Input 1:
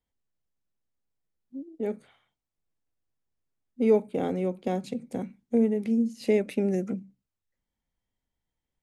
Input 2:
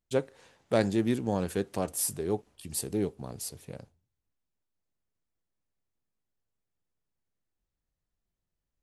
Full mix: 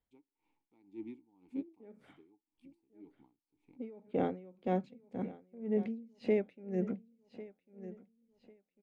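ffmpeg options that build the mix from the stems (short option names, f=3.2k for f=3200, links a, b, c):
-filter_complex "[0:a]alimiter=limit=-19dB:level=0:latency=1:release=12,lowpass=2.8k,volume=-1dB,asplit=2[a][b];[b]volume=-16dB[c];[1:a]deesser=0.75,asplit=3[d][e][f];[d]bandpass=f=300:t=q:w=8,volume=0dB[g];[e]bandpass=f=870:t=q:w=8,volume=-6dB[h];[f]bandpass=f=2.24k:t=q:w=8,volume=-9dB[i];[g][h][i]amix=inputs=3:normalize=0,volume=-5.5dB[j];[c]aecho=0:1:1098|2196|3294|4392|5490:1|0.37|0.137|0.0507|0.0187[k];[a][j][k]amix=inputs=3:normalize=0,aeval=exprs='val(0)*pow(10,-25*(0.5-0.5*cos(2*PI*1.9*n/s))/20)':c=same"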